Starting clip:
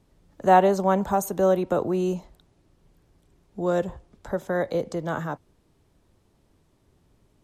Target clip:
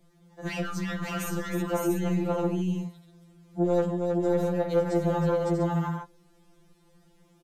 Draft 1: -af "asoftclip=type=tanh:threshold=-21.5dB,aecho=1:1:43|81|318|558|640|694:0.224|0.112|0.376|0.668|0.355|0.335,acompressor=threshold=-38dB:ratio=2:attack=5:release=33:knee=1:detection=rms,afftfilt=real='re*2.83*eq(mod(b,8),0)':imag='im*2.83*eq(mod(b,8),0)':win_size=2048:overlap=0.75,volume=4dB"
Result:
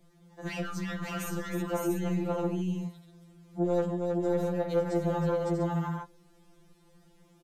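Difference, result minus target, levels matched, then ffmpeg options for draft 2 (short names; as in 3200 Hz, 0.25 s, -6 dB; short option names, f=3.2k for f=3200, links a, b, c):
compressor: peak gain reduction +3 dB
-af "asoftclip=type=tanh:threshold=-21.5dB,aecho=1:1:43|81|318|558|640|694:0.224|0.112|0.376|0.668|0.355|0.335,acompressor=threshold=-31.5dB:ratio=2:attack=5:release=33:knee=1:detection=rms,afftfilt=real='re*2.83*eq(mod(b,8),0)':imag='im*2.83*eq(mod(b,8),0)':win_size=2048:overlap=0.75,volume=4dB"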